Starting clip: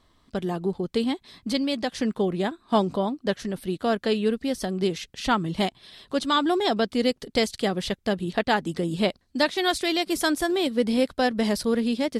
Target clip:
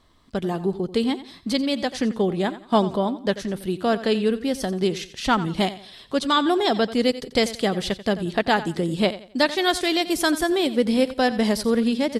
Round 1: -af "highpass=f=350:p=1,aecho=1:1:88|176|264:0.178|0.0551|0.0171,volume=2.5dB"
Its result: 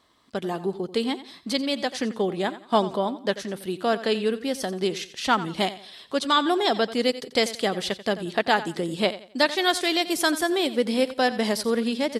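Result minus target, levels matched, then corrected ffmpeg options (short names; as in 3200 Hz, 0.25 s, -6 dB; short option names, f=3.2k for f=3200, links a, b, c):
250 Hz band -2.5 dB
-af "aecho=1:1:88|176|264:0.178|0.0551|0.0171,volume=2.5dB"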